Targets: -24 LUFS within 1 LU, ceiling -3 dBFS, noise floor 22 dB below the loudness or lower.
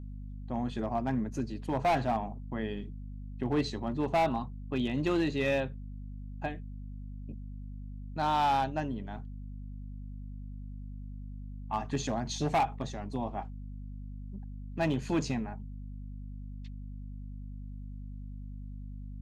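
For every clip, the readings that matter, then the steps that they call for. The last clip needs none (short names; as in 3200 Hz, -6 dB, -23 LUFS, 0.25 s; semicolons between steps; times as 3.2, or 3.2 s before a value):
clipped 1.0%; flat tops at -22.5 dBFS; hum 50 Hz; harmonics up to 250 Hz; hum level -39 dBFS; loudness -33.0 LUFS; peak -22.5 dBFS; loudness target -24.0 LUFS
-> clip repair -22.5 dBFS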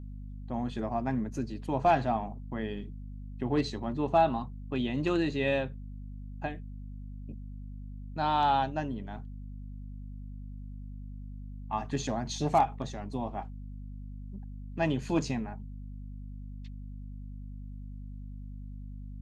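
clipped 0.0%; hum 50 Hz; harmonics up to 250 Hz; hum level -39 dBFS
-> notches 50/100/150/200/250 Hz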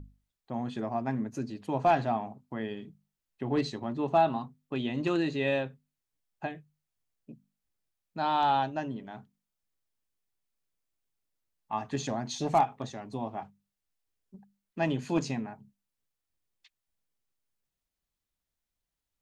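hum none; loudness -31.5 LUFS; peak -13.5 dBFS; loudness target -24.0 LUFS
-> gain +7.5 dB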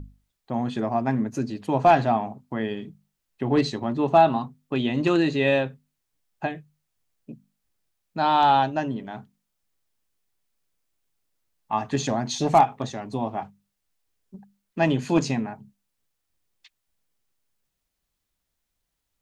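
loudness -24.0 LUFS; peak -6.0 dBFS; noise floor -80 dBFS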